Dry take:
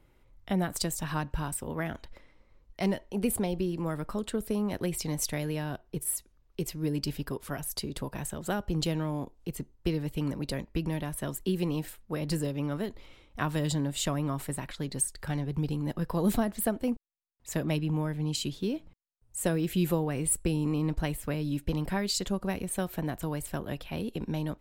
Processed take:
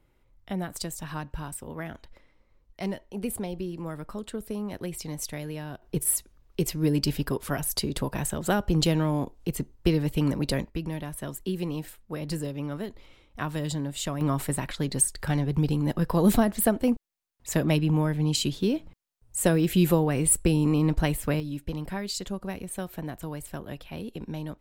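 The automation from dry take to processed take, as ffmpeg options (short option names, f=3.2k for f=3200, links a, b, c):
-af "asetnsamples=n=441:p=0,asendcmd='5.82 volume volume 6.5dB;10.7 volume volume -1dB;14.21 volume volume 6dB;21.4 volume volume -2.5dB',volume=-3dB"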